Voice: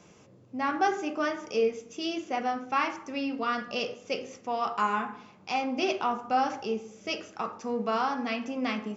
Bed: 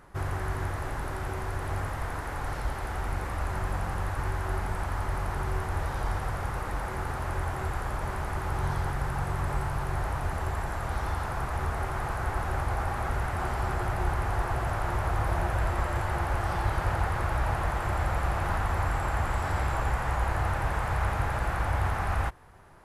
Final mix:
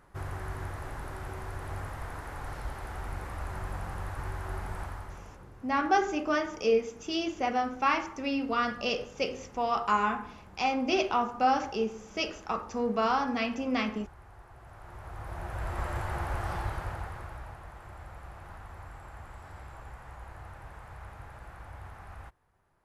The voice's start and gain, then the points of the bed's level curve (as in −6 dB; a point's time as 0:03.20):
5.10 s, +1.0 dB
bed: 0:04.83 −6 dB
0:05.51 −23.5 dB
0:14.52 −23.5 dB
0:15.85 −4.5 dB
0:16.55 −4.5 dB
0:17.61 −18 dB